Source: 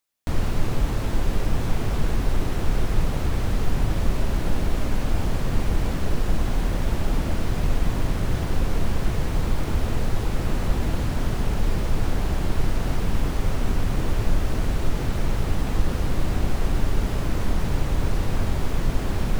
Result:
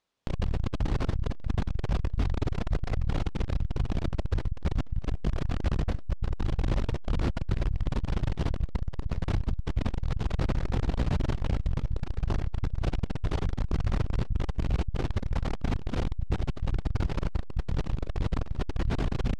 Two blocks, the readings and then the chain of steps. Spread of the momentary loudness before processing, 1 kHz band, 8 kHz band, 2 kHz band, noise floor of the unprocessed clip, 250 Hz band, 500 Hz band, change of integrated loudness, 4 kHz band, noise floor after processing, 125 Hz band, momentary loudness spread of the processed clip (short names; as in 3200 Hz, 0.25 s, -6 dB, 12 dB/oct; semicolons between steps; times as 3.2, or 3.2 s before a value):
1 LU, -7.0 dB, -14.5 dB, -8.0 dB, -27 dBFS, -5.5 dB, -6.5 dB, -5.0 dB, -8.0 dB, -34 dBFS, -4.0 dB, 3 LU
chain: bell 3600 Hz +4 dB 1.6 oct; in parallel at -6 dB: decimation with a swept rate 15×, swing 60% 0.63 Hz; on the sum: hard clip -17.5 dBFS, distortion -8 dB; air absorption 87 m; core saturation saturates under 63 Hz